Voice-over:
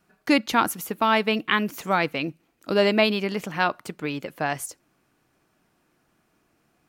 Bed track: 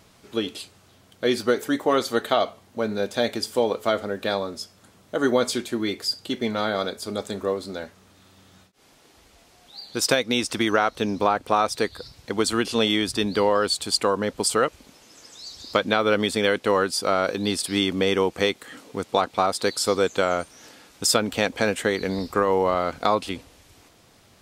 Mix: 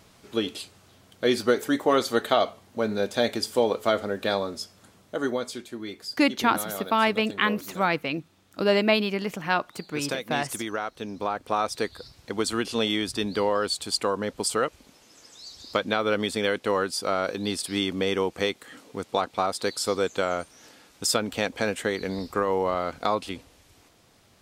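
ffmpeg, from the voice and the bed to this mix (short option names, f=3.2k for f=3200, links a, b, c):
-filter_complex "[0:a]adelay=5900,volume=-1.5dB[a];[1:a]volume=5.5dB,afade=t=out:st=4.85:d=0.59:silence=0.334965,afade=t=in:st=11.1:d=0.58:silence=0.501187[b];[a][b]amix=inputs=2:normalize=0"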